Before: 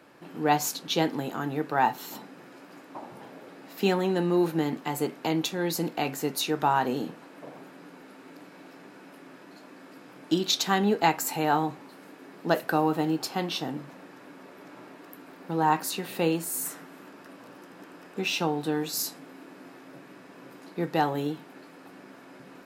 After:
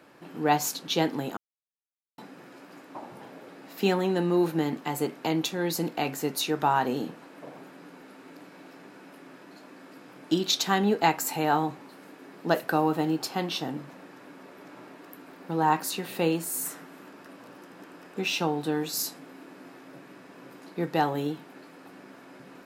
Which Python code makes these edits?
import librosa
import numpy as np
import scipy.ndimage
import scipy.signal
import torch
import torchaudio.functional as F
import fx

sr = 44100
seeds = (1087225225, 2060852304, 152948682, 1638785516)

y = fx.edit(x, sr, fx.silence(start_s=1.37, length_s=0.81), tone=tone)